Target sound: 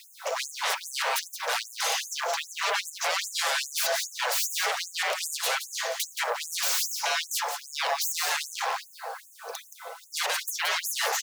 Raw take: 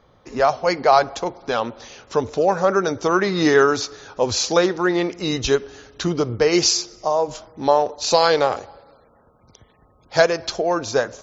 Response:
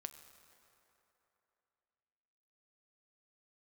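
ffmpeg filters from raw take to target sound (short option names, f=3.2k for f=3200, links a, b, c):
-filter_complex "[0:a]lowshelf=f=140:g=9.5,areverse,acompressor=threshold=-24dB:ratio=6,areverse,alimiter=limit=-24dB:level=0:latency=1:release=146,aeval=exprs='0.0631*sin(PI/2*5.01*val(0)/0.0631)':c=same,afreqshift=240,acrusher=bits=7:mix=0:aa=0.000001,aecho=1:1:173:0.398,asplit=2[a][b];[1:a]atrim=start_sample=2205,adelay=6[c];[b][c]afir=irnorm=-1:irlink=0,volume=-5.5dB[d];[a][d]amix=inputs=2:normalize=0,afftfilt=real='re*gte(b*sr/1024,390*pow(6600/390,0.5+0.5*sin(2*PI*2.5*pts/sr)))':imag='im*gte(b*sr/1024,390*pow(6600/390,0.5+0.5*sin(2*PI*2.5*pts/sr)))':win_size=1024:overlap=0.75"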